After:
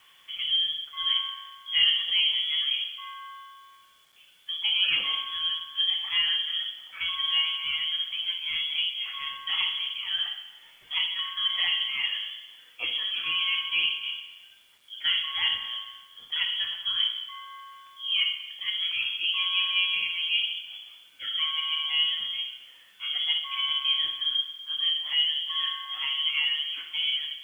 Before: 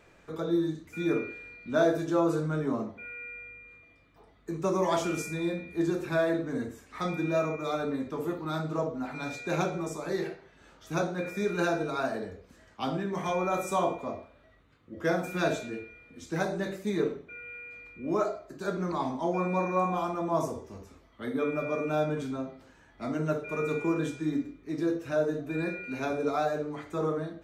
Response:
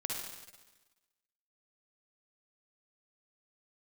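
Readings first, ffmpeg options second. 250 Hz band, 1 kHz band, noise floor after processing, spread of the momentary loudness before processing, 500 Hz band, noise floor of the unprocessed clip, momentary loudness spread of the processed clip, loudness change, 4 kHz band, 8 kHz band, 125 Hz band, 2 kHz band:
under -30 dB, -8.5 dB, -56 dBFS, 12 LU, under -30 dB, -59 dBFS, 13 LU, +5.5 dB, +26.0 dB, under -15 dB, under -25 dB, +6.5 dB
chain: -filter_complex "[0:a]lowpass=f=3000:t=q:w=0.5098,lowpass=f=3000:t=q:w=0.6013,lowpass=f=3000:t=q:w=0.9,lowpass=f=3000:t=q:w=2.563,afreqshift=-3500,asplit=2[s0][s1];[1:a]atrim=start_sample=2205,highshelf=f=7200:g=4[s2];[s1][s2]afir=irnorm=-1:irlink=0,volume=0.501[s3];[s0][s3]amix=inputs=2:normalize=0,acrusher=bits=9:mix=0:aa=0.000001,volume=0.794"

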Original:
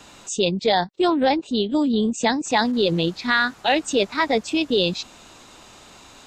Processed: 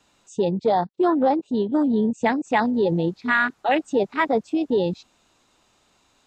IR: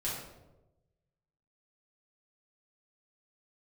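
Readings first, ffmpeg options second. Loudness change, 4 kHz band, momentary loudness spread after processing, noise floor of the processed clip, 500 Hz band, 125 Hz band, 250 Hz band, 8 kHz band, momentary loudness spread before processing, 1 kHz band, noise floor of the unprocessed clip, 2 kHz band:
-1.0 dB, -14.0 dB, 4 LU, -64 dBFS, 0.0 dB, 0.0 dB, 0.0 dB, under -15 dB, 4 LU, 0.0 dB, -48 dBFS, -1.5 dB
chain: -af "afwtdn=0.0631"

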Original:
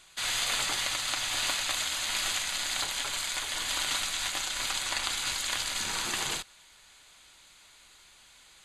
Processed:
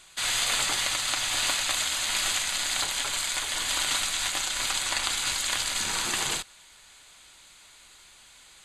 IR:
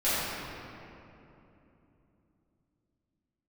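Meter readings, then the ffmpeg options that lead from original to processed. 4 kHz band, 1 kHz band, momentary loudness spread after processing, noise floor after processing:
+3.0 dB, +3.0 dB, 3 LU, -54 dBFS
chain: -af "equalizer=f=8200:t=o:w=0.32:g=3.5,volume=1.41"

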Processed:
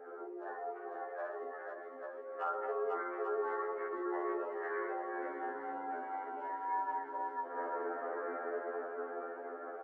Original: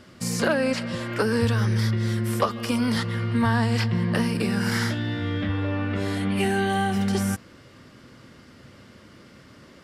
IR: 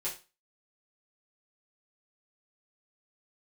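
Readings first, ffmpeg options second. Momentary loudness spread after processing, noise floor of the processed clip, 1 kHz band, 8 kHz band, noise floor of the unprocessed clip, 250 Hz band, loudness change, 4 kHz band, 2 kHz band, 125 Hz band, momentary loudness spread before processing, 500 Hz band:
8 LU, -47 dBFS, -6.0 dB, under -40 dB, -50 dBFS, -22.5 dB, -15.0 dB, under -40 dB, -15.0 dB, under -40 dB, 5 LU, -9.0 dB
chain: -filter_complex "[0:a]acompressor=threshold=0.0158:ratio=20,lowpass=f=1300:w=0.5412,lowpass=f=1300:w=1.3066,aresample=16000,volume=44.7,asoftclip=hard,volume=0.0224,aresample=44100,alimiter=level_in=7.5:limit=0.0631:level=0:latency=1:release=68,volume=0.133,highpass=f=540:p=1,afreqshift=180,dynaudnorm=f=290:g=13:m=2.37,asplit=2[s0][s1];[s1]aecho=0:1:53|118|494|513|842:0.708|0.299|0.668|0.447|0.562[s2];[s0][s2]amix=inputs=2:normalize=0,afftdn=nr=13:nf=-54,afftfilt=real='re*2*eq(mod(b,4),0)':imag='im*2*eq(mod(b,4),0)':win_size=2048:overlap=0.75,volume=3.16"

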